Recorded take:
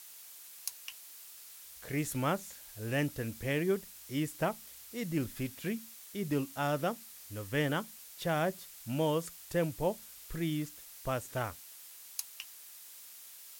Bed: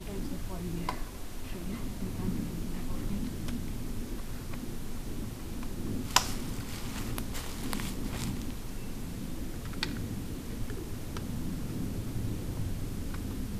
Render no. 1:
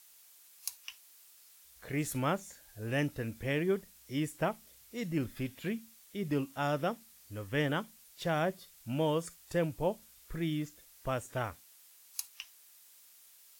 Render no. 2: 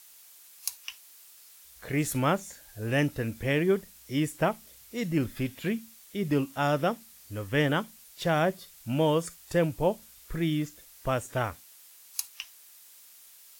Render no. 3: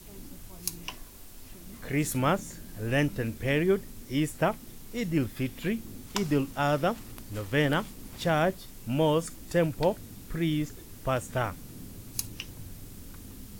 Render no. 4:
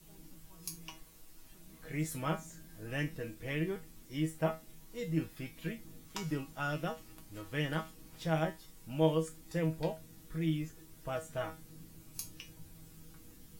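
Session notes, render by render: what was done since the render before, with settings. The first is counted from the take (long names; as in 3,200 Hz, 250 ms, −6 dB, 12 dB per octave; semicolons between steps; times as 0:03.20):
noise reduction from a noise print 8 dB
level +6 dB
mix in bed −9.5 dB
tuned comb filter 160 Hz, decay 0.22 s, harmonics all, mix 90%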